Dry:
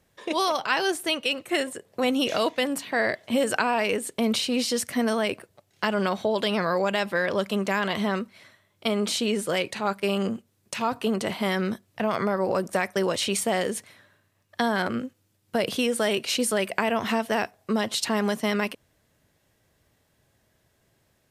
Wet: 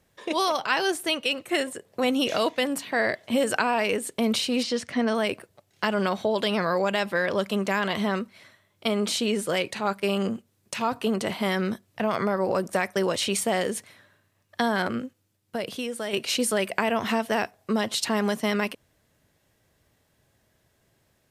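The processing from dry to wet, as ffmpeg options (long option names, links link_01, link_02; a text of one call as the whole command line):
ffmpeg -i in.wav -filter_complex "[0:a]asettb=1/sr,asplit=3[link_01][link_02][link_03];[link_01]atrim=end=4.634[link_04];[link_02]atrim=start=4.63:end=5.15,asetpts=PTS-STARTPTS,afade=type=in:duration=0.004:curve=qsin,afade=type=out:start_time=0.516:duration=0.004:curve=qsin,lowpass=4700[link_05];[link_03]atrim=start=5.146[link_06];[link_04][link_05]acrossfade=duration=0.004:curve1=hsin:curve2=qsin[link_07];[link_07][link_06]acrossfade=duration=0.004:curve1=qsin:curve2=hsin,asplit=2[link_08][link_09];[link_08]atrim=end=16.13,asetpts=PTS-STARTPTS,afade=type=out:start_time=14.86:duration=1.27:curve=qua:silence=0.421697[link_10];[link_09]atrim=start=16.13,asetpts=PTS-STARTPTS,afade=type=in:duration=0.004:curve=hsin:silence=0.421697[link_11];[link_10][link_11]concat=n=2:v=0:a=1" out.wav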